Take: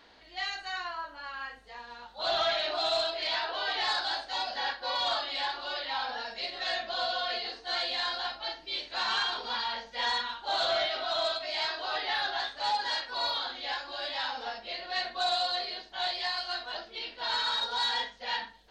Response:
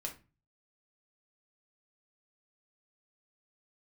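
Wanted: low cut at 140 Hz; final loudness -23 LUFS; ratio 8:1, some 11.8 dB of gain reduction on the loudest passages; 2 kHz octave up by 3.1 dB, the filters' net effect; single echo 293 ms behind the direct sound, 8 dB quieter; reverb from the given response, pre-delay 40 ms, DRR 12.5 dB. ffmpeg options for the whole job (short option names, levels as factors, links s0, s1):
-filter_complex "[0:a]highpass=140,equalizer=f=2000:t=o:g=4,acompressor=threshold=0.0141:ratio=8,aecho=1:1:293:0.398,asplit=2[s0][s1];[1:a]atrim=start_sample=2205,adelay=40[s2];[s1][s2]afir=irnorm=-1:irlink=0,volume=0.251[s3];[s0][s3]amix=inputs=2:normalize=0,volume=5.62"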